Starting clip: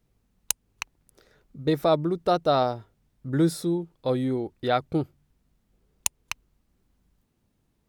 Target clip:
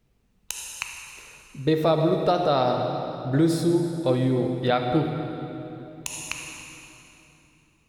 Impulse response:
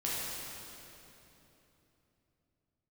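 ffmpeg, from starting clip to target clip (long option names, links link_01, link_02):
-filter_complex "[0:a]asplit=2[link_01][link_02];[link_02]lowpass=frequency=12000:width=0.5412,lowpass=frequency=12000:width=1.3066[link_03];[1:a]atrim=start_sample=2205[link_04];[link_03][link_04]afir=irnorm=-1:irlink=0,volume=-7.5dB[link_05];[link_01][link_05]amix=inputs=2:normalize=0,alimiter=limit=-11.5dB:level=0:latency=1:release=80,equalizer=frequency=2600:width=2.4:gain=4"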